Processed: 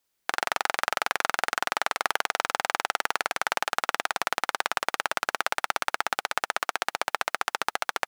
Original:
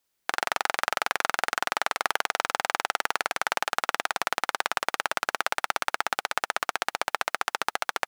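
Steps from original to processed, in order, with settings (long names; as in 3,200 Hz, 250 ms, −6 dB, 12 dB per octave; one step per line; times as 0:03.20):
0:06.58–0:07.12: high-pass filter 260 Hz → 90 Hz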